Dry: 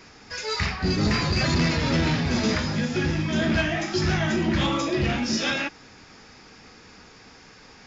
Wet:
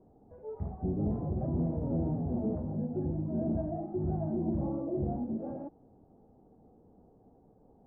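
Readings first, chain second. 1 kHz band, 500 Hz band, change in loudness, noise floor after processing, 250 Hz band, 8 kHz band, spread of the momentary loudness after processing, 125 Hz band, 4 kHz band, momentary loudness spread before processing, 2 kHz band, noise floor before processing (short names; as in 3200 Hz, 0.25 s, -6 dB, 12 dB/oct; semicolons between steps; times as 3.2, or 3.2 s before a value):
-14.0 dB, -8.0 dB, -9.5 dB, -62 dBFS, -7.5 dB, n/a, 9 LU, -8.0 dB, under -40 dB, 4 LU, under -40 dB, -50 dBFS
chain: Chebyshev low-pass 750 Hz, order 4; gain -7.5 dB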